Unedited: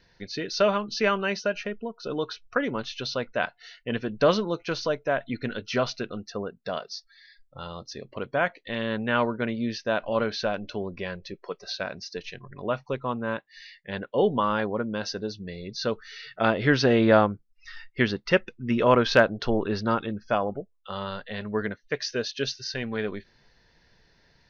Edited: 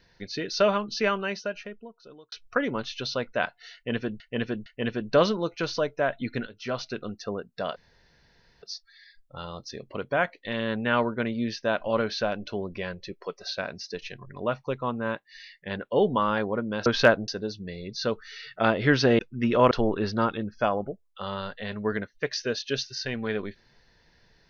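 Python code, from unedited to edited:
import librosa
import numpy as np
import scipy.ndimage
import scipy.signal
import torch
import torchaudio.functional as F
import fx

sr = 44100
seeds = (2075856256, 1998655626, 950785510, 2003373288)

y = fx.edit(x, sr, fx.fade_out_span(start_s=0.83, length_s=1.49),
    fx.repeat(start_s=3.74, length_s=0.46, count=3),
    fx.fade_in_from(start_s=5.55, length_s=0.58, floor_db=-15.0),
    fx.insert_room_tone(at_s=6.84, length_s=0.86),
    fx.cut(start_s=16.99, length_s=1.47),
    fx.move(start_s=18.98, length_s=0.42, to_s=15.08), tone=tone)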